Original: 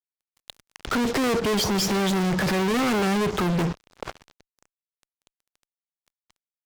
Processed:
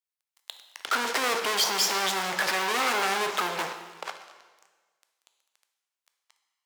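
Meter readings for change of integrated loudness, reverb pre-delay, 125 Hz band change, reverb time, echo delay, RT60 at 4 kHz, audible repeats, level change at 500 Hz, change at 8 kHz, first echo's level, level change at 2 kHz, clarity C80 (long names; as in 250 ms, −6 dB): −2.5 dB, 6 ms, −22.5 dB, 1.4 s, no echo audible, 1.3 s, no echo audible, −7.0 dB, +2.0 dB, no echo audible, +2.0 dB, 10.0 dB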